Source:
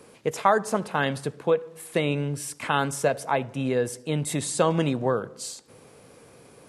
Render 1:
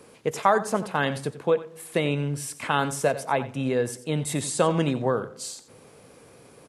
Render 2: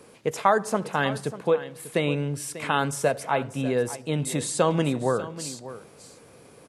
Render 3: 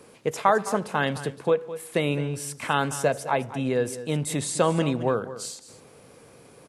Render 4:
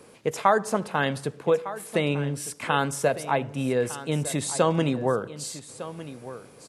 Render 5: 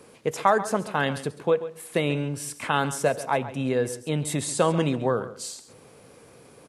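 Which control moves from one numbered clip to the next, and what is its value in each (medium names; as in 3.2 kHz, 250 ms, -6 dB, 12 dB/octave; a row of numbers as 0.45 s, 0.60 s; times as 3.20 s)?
delay, time: 90 ms, 593 ms, 212 ms, 1205 ms, 136 ms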